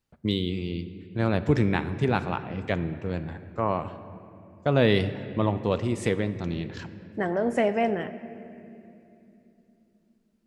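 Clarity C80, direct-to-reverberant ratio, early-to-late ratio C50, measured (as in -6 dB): 13.5 dB, 11.0 dB, 12.5 dB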